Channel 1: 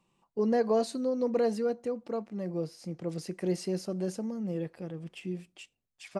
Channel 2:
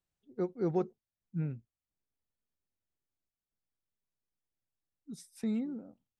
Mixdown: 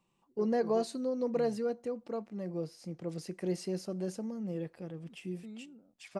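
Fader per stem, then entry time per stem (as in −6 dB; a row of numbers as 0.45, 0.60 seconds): −3.5, −14.0 decibels; 0.00, 0.00 seconds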